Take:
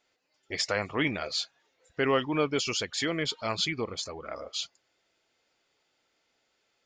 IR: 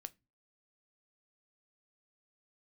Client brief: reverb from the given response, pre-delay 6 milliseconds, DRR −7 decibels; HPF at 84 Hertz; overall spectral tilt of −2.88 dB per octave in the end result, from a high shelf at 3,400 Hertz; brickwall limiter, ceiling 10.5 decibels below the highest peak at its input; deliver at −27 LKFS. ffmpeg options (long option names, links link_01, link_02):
-filter_complex "[0:a]highpass=84,highshelf=frequency=3400:gain=7.5,alimiter=limit=-22dB:level=0:latency=1,asplit=2[link_01][link_02];[1:a]atrim=start_sample=2205,adelay=6[link_03];[link_02][link_03]afir=irnorm=-1:irlink=0,volume=12.5dB[link_04];[link_01][link_04]amix=inputs=2:normalize=0,volume=-2.5dB"